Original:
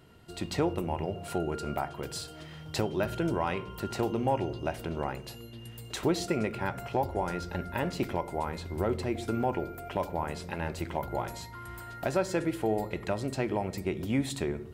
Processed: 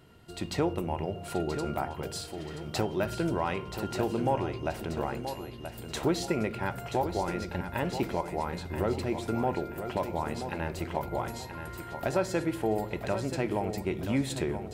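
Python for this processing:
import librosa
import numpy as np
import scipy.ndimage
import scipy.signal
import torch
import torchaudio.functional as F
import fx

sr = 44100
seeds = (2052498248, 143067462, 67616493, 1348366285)

y = fx.echo_feedback(x, sr, ms=979, feedback_pct=36, wet_db=-9.0)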